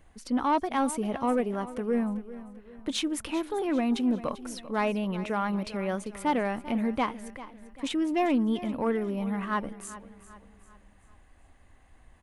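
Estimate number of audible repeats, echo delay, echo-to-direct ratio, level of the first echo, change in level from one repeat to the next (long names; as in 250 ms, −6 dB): 3, 393 ms, −14.5 dB, −15.5 dB, −7.0 dB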